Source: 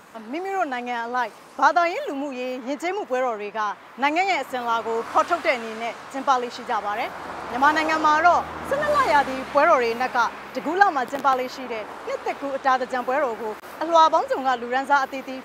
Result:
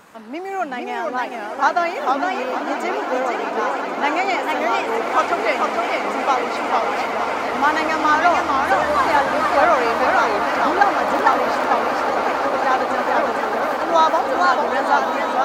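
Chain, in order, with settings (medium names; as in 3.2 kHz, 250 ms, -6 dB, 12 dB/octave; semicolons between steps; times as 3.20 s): echo with a slow build-up 181 ms, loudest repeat 8, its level -13.5 dB; modulated delay 452 ms, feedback 34%, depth 198 cents, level -3 dB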